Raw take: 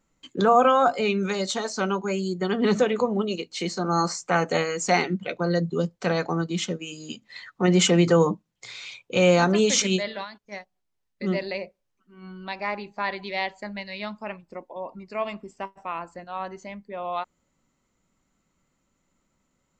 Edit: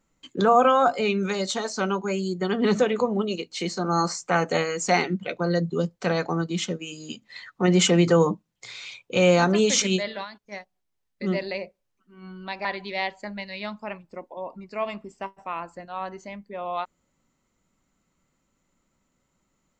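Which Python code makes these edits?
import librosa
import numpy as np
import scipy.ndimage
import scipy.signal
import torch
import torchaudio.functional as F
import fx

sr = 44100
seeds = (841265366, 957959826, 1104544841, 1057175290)

y = fx.edit(x, sr, fx.cut(start_s=12.65, length_s=0.39), tone=tone)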